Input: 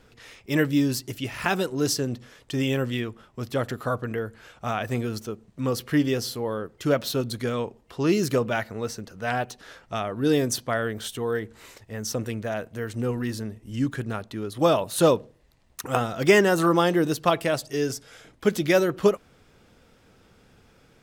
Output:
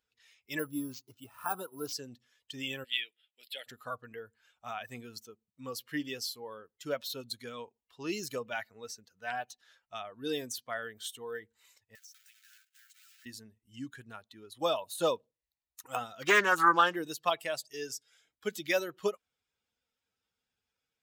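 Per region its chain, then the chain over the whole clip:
0.59–1.93 LPF 8200 Hz + resonant high shelf 1600 Hz -7 dB, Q 3 + careless resampling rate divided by 4×, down none, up hold
2.84–3.66 HPF 560 Hz + bell 5600 Hz +10 dB 3 oct + fixed phaser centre 2700 Hz, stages 4
11.95–13.26 block floating point 3-bit + Chebyshev high-pass 1300 Hz, order 8 + compressor, threshold -42 dBFS
16.22–16.96 bell 1300 Hz +9.5 dB 0.7 oct + Doppler distortion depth 0.3 ms
whole clip: per-bin expansion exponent 1.5; de-esser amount 65%; HPF 1300 Hz 6 dB/oct

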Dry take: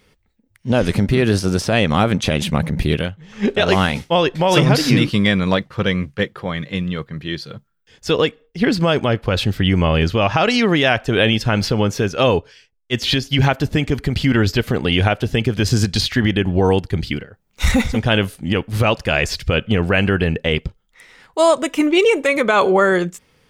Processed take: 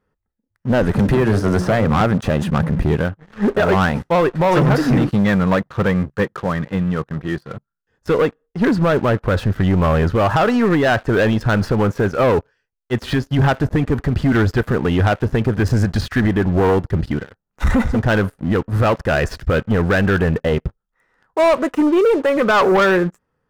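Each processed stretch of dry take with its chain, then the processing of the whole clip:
0.99–2.01 notches 60/120/180/240/300/360/420/480/540/600 Hz + three-band squash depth 100%
whole clip: resonant high shelf 2200 Hz -13 dB, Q 1.5; notch 2200 Hz, Q 6.5; sample leveller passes 3; gain -7.5 dB

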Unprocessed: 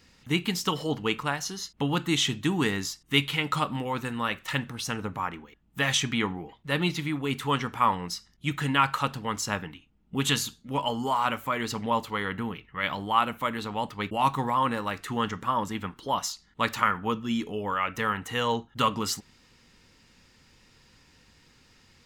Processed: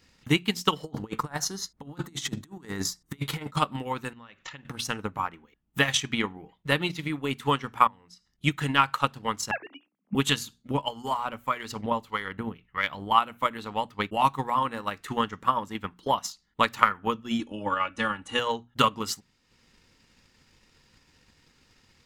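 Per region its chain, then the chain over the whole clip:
0.83–3.57 bell 2800 Hz -11.5 dB 0.68 oct + negative-ratio compressor -33 dBFS, ratio -0.5
4.13–4.65 brick-wall FIR low-pass 7600 Hz + compressor 12:1, threshold -39 dBFS
7.87–8.31 LPF 9700 Hz + compressor 2:1, threshold -52 dBFS
9.51–10.15 sine-wave speech + notches 60/120/180/240/300/360 Hz
10.71–13.11 low shelf 61 Hz +9.5 dB + harmonic tremolo 1.7 Hz, depth 50%, crossover 860 Hz
17.39–18.39 brick-wall FIR low-pass 11000 Hz + bell 2000 Hz -6.5 dB 0.24 oct + comb 3.5 ms, depth 78%
whole clip: notches 60/120/180/240 Hz; transient shaper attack +9 dB, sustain -7 dB; gain -3 dB

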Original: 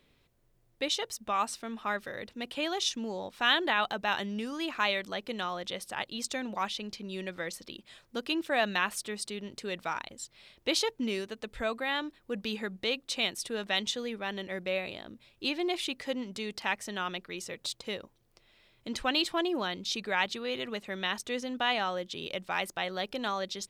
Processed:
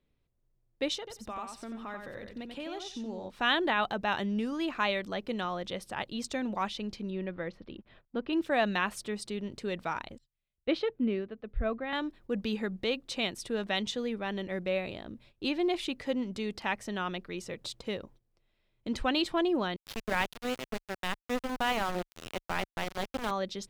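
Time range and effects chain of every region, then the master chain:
0.98–3.3 compressor 2:1, threshold -44 dBFS + feedback echo 89 ms, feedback 16%, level -5.5 dB
7.1–8.33 backlash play -57 dBFS + air absorption 330 m
10.18–11.93 air absorption 390 m + notch 920 Hz, Q 6.1 + three-band expander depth 70%
19.76–23.31 BPF 130–4100 Hz + low shelf 280 Hz +5 dB + sample gate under -30 dBFS
whole clip: gate -59 dBFS, range -14 dB; tilt -2 dB/oct

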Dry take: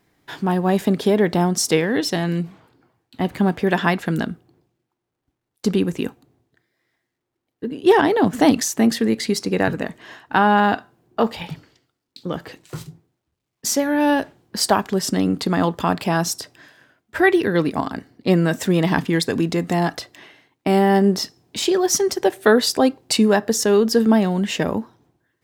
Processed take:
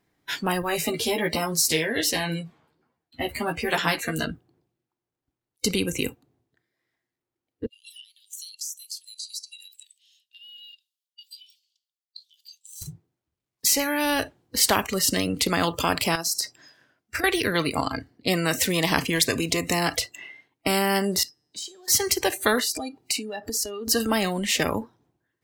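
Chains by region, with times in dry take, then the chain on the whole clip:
0.62–4.26 flange 1.3 Hz, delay 3.7 ms, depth 5.2 ms, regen +55% + doubler 13 ms -3 dB
7.66–12.82 steep high-pass 3000 Hz 48 dB/oct + compressor 4:1, threshold -47 dBFS + three-band expander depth 40%
16.15–17.24 HPF 61 Hz + bell 5300 Hz +5.5 dB 0.42 oct + compressor 10:1, threshold -26 dBFS
21.23–21.88 compressor 8:1, threshold -30 dBFS + resonator 150 Hz, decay 1.1 s, mix 70%
22.6–23.88 notch comb 530 Hz + compressor 4:1, threshold -30 dBFS
whole clip: spectral noise reduction 20 dB; spectral compressor 2:1

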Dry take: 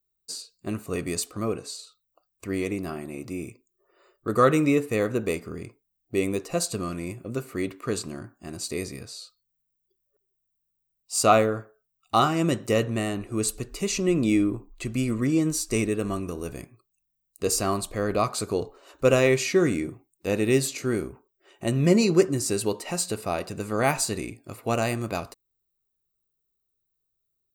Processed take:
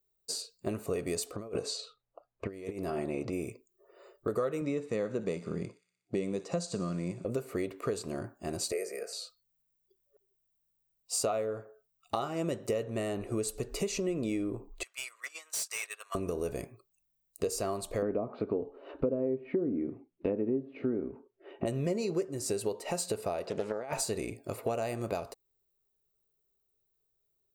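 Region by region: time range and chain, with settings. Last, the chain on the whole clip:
1.36–3.33 low-pass opened by the level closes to 1600 Hz, open at -26 dBFS + negative-ratio compressor -35 dBFS, ratio -0.5
4.61–7.25 speaker cabinet 110–7700 Hz, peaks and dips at 180 Hz +10 dB, 430 Hz -5 dB, 700 Hz -4 dB, 2500 Hz -5 dB + thin delay 60 ms, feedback 64%, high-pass 3000 Hz, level -15 dB
8.72–9.13 steep high-pass 240 Hz + fixed phaser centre 990 Hz, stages 6 + three-band squash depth 40%
14.83–16.15 HPF 1100 Hz 24 dB/oct + gate -41 dBFS, range -14 dB + hard clip -31 dBFS
18.02–21.66 LPF 3000 Hz 24 dB/oct + treble ducked by the level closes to 690 Hz, closed at -19 dBFS + bell 260 Hz +14.5 dB 0.83 oct
23.47–23.93 negative-ratio compressor -29 dBFS, ratio -0.5 + BPF 170–4800 Hz + Doppler distortion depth 0.33 ms
whole clip: band shelf 580 Hz +8 dB 1.3 oct; compressor 6:1, threshold -30 dBFS; notch 760 Hz, Q 12

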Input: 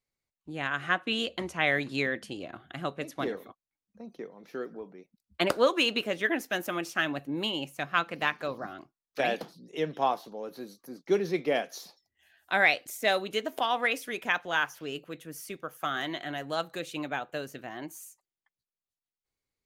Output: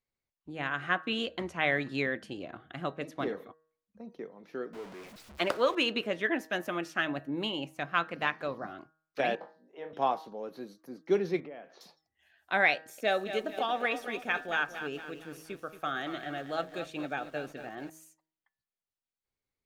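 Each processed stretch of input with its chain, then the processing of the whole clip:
4.73–5.75 zero-crossing step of -37.5 dBFS + low shelf 360 Hz -8.5 dB
9.35–9.93 band-pass 840 Hz, Q 1.7 + flutter echo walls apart 3.5 m, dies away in 0.21 s
11.4–11.81 LPF 2200 Hz + compressor 4:1, threshold -43 dBFS
12.75–17.9 notch comb 1000 Hz + lo-fi delay 0.229 s, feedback 55%, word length 8-bit, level -10 dB
whole clip: high shelf 5500 Hz -11.5 dB; de-hum 158.3 Hz, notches 12; gain -1 dB

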